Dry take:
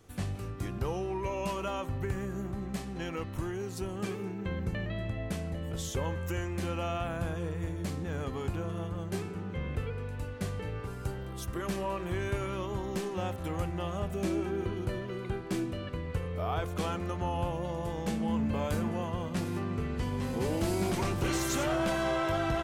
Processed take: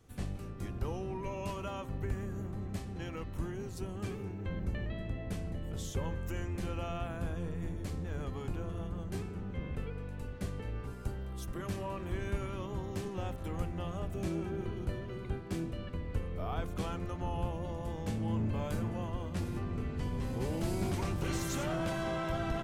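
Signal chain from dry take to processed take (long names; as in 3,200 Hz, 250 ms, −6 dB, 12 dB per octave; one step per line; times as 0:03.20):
sub-octave generator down 1 octave, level +2 dB
level −6 dB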